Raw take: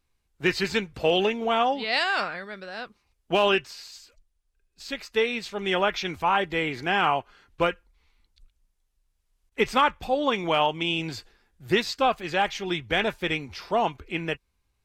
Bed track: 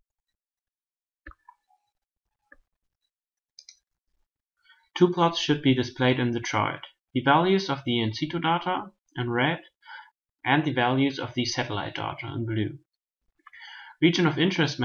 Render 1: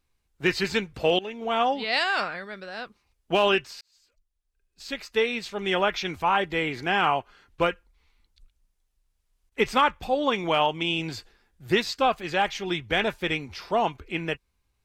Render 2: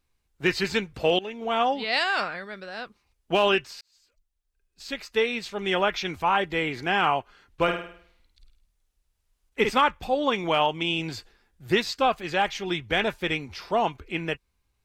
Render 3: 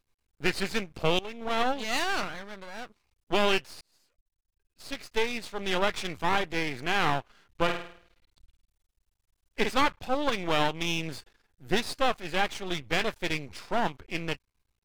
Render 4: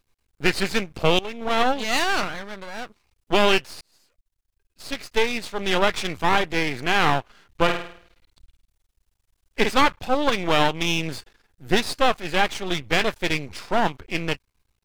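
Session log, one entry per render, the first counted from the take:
1.19–1.64 s: fade in, from -19.5 dB; 3.81–4.92 s: fade in
7.63–9.70 s: flutter echo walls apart 8.8 m, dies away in 0.57 s
half-wave rectifier
trim +6.5 dB

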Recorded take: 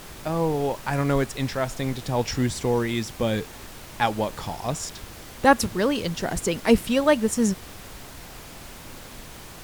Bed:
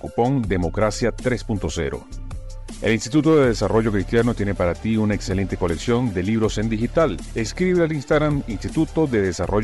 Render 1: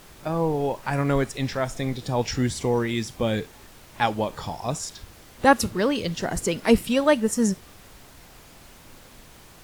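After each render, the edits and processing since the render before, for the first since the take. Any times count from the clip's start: noise print and reduce 7 dB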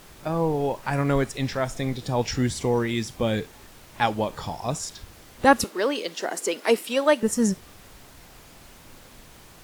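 5.64–7.23 s: high-pass 310 Hz 24 dB/octave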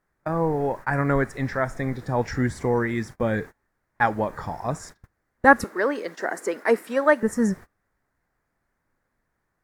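gate -36 dBFS, range -27 dB; resonant high shelf 2.3 kHz -8.5 dB, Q 3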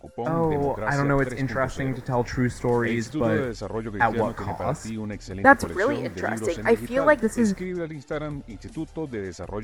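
add bed -12 dB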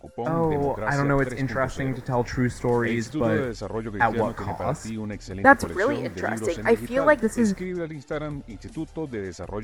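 no audible change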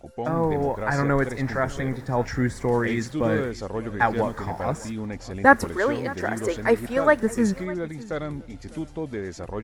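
delay 603 ms -19.5 dB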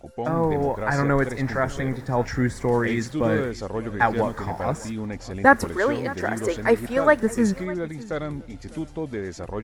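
trim +1 dB; peak limiter -2 dBFS, peak gain reduction 2 dB

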